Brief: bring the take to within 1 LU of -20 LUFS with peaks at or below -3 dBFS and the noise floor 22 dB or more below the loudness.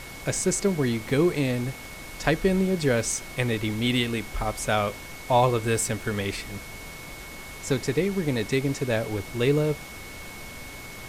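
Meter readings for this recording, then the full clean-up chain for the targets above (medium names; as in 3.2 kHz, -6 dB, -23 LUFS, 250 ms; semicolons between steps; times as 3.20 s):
steady tone 2.2 kHz; tone level -43 dBFS; noise floor -41 dBFS; noise floor target -48 dBFS; loudness -25.5 LUFS; peak level -7.5 dBFS; loudness target -20.0 LUFS
-> band-stop 2.2 kHz, Q 30; noise print and reduce 7 dB; trim +5.5 dB; peak limiter -3 dBFS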